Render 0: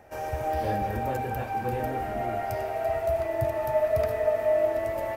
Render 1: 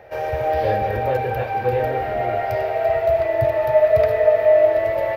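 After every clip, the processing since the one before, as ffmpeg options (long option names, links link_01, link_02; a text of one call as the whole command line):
ffmpeg -i in.wav -af "equalizer=frequency=125:width_type=o:width=1:gain=6,equalizer=frequency=250:width_type=o:width=1:gain=-7,equalizer=frequency=500:width_type=o:width=1:gain=12,equalizer=frequency=2000:width_type=o:width=1:gain=7,equalizer=frequency=4000:width_type=o:width=1:gain=8,equalizer=frequency=8000:width_type=o:width=1:gain=-12,volume=1.5dB" out.wav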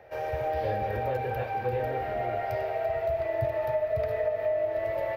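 ffmpeg -i in.wav -filter_complex "[0:a]acrossover=split=250[link_01][link_02];[link_02]acompressor=threshold=-18dB:ratio=6[link_03];[link_01][link_03]amix=inputs=2:normalize=0,volume=-7.5dB" out.wav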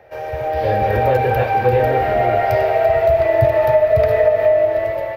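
ffmpeg -i in.wav -af "dynaudnorm=framelen=260:gausssize=5:maxgain=9.5dB,volume=5dB" out.wav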